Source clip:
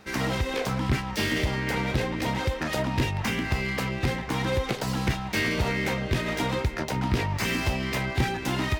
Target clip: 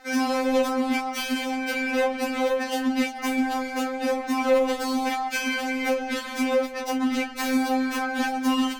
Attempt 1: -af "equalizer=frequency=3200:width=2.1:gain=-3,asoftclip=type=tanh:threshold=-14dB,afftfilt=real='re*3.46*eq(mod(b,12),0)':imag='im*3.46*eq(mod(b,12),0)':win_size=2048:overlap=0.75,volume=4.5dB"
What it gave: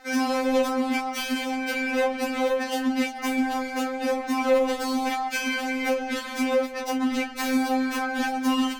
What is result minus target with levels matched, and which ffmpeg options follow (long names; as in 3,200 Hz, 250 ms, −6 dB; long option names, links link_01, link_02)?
soft clipping: distortion +21 dB
-af "equalizer=frequency=3200:width=2.1:gain=-3,asoftclip=type=tanh:threshold=-2.5dB,afftfilt=real='re*3.46*eq(mod(b,12),0)':imag='im*3.46*eq(mod(b,12),0)':win_size=2048:overlap=0.75,volume=4.5dB"